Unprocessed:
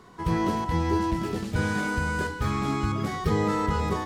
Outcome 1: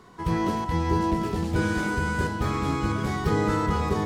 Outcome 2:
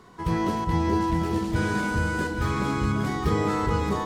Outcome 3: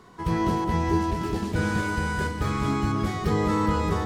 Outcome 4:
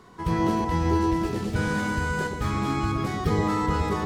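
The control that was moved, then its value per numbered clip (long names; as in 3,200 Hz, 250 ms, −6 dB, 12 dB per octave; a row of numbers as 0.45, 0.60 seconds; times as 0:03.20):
delay that swaps between a low-pass and a high-pass, delay time: 647, 407, 205, 121 milliseconds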